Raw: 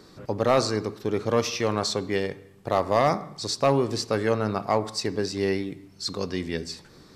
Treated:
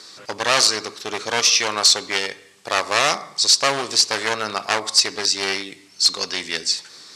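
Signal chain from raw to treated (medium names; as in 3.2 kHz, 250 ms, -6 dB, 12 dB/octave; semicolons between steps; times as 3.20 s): one-sided wavefolder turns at -23.5 dBFS; frequency weighting ITU-R 468; trim +5 dB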